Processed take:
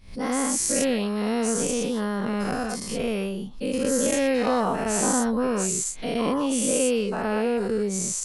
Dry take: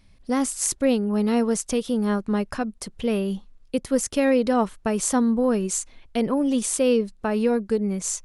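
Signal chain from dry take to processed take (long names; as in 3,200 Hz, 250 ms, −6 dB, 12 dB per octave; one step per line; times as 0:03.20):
every bin's largest magnitude spread in time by 240 ms
background raised ahead of every attack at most 130 dB per second
level −6.5 dB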